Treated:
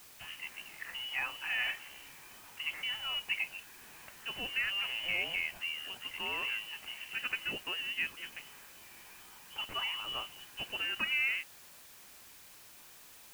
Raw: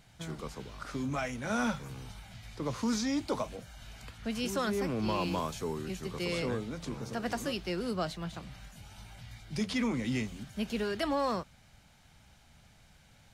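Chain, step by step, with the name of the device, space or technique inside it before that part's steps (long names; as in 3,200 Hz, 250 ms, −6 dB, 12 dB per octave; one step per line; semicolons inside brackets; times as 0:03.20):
scrambled radio voice (band-pass filter 370–2,700 Hz; voice inversion scrambler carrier 3,200 Hz; white noise bed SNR 16 dB)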